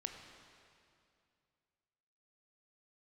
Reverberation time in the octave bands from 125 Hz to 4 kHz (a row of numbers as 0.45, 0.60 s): 2.9, 2.7, 2.5, 2.4, 2.2, 2.2 s